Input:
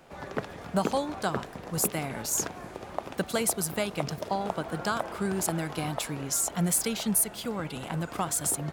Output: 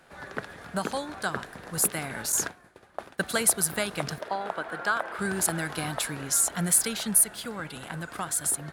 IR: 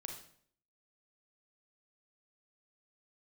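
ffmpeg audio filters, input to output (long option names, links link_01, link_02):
-filter_complex "[0:a]asettb=1/sr,asplit=3[link_01][link_02][link_03];[link_01]atrim=end=2.324[link_04];[link_02]atrim=start=2.32:end=3.29,asetpts=PTS-STARTPTS,afade=type=in:duration=0.004:curve=qsin,afade=type=out:start_time=0.966:duration=0.004:curve=qsin,agate=range=-33dB:threshold=-30dB:ratio=3:detection=peak[link_05];[link_03]atrim=start=3.286[link_06];[link_04][link_05]acrossfade=duration=0.004:curve1=hsin:curve2=qsin[link_07];[link_07][link_06]acrossfade=duration=0.004:curve1=qsin:curve2=hsin,asettb=1/sr,asplit=3[link_08][link_09][link_10];[link_08]atrim=end=4.184[link_11];[link_09]atrim=start=4.18:end=5.19,asetpts=PTS-STARTPTS,afade=type=in:duration=0.004:curve=qsin,afade=type=out:start_time=1.006:duration=0.004:curve=qsin,bass=frequency=250:gain=-13,treble=frequency=4000:gain=-11[link_12];[link_10]atrim=start=5.186[link_13];[link_11][link_12]acrossfade=duration=0.004:curve1=hsin:curve2=qsin[link_14];[link_14][link_13]acrossfade=duration=0.004:curve1=qsin:curve2=hsin,dynaudnorm=framelen=350:gausssize=11:maxgain=3.5dB,equalizer=frequency=1600:width_type=o:width=0.67:gain=10,equalizer=frequency=4000:width_type=o:width=0.67:gain=5,equalizer=frequency=10000:width_type=o:width=0.67:gain=9,volume=-5dB"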